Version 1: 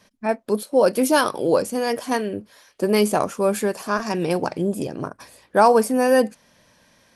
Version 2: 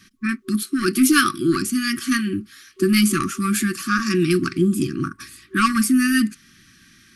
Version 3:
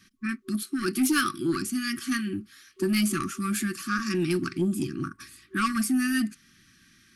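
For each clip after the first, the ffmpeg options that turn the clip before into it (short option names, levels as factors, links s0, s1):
-af "acontrast=70,afftfilt=real='re*(1-between(b*sr/4096,380,1100))':imag='im*(1-between(b*sr/4096,380,1100))':win_size=4096:overlap=0.75"
-af "asoftclip=type=tanh:threshold=0.422,volume=0.447"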